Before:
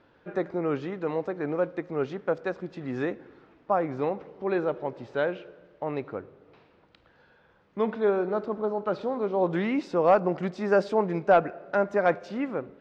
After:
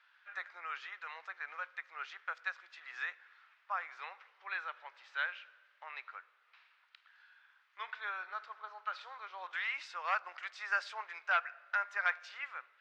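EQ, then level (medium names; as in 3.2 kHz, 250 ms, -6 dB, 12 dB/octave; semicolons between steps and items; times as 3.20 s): high-pass 1.4 kHz 24 dB/octave; treble shelf 5.1 kHz -9 dB; +2.5 dB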